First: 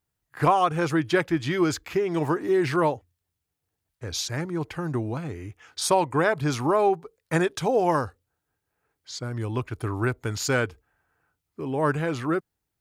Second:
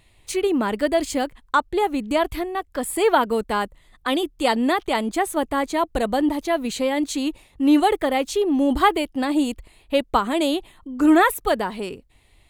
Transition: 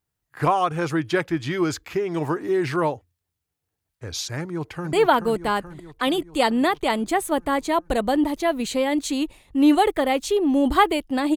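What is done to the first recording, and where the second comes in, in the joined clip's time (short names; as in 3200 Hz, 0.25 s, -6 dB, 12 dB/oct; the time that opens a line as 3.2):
first
4.41–4.93 echo throw 0.43 s, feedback 65%, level -7 dB
4.93 switch to second from 2.98 s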